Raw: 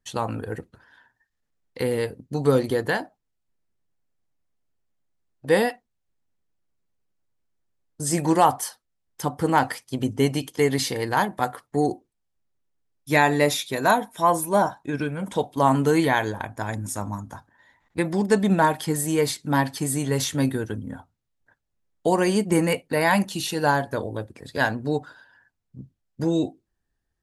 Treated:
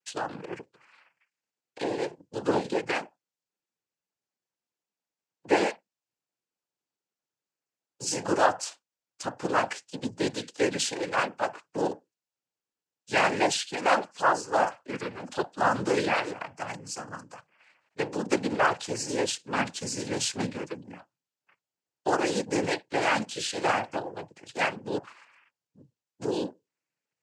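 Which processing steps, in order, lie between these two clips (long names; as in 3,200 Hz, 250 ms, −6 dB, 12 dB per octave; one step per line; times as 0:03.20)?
bass and treble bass −12 dB, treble +4 dB
cochlear-implant simulation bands 8
level −3.5 dB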